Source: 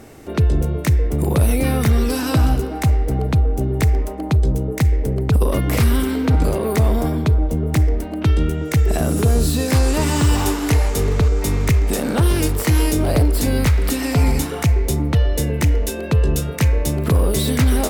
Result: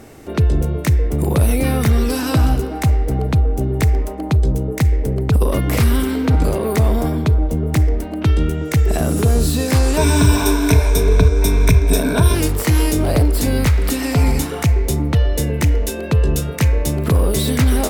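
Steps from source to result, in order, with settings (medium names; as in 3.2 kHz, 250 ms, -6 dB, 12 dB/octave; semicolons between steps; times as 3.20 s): 9.97–12.35 s: rippled EQ curve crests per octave 1.6, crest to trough 14 dB; trim +1 dB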